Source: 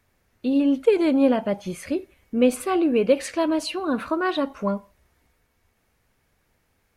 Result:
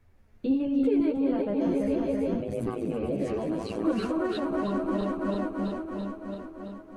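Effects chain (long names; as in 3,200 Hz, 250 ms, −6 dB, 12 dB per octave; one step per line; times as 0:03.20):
feedback delay that plays each chunk backwards 167 ms, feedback 82%, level −5 dB
in parallel at 0 dB: downward compressor, threshold −25 dBFS, peak gain reduction 13.5 dB
on the sum: brickwall limiter −14.5 dBFS, peak gain reduction 11 dB
0:02.40–0:03.85: amplitude modulation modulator 110 Hz, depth 95%
multi-voice chorus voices 2, 0.77 Hz, delay 12 ms, depth 2.4 ms
spectral tilt −2.5 dB per octave
level −5 dB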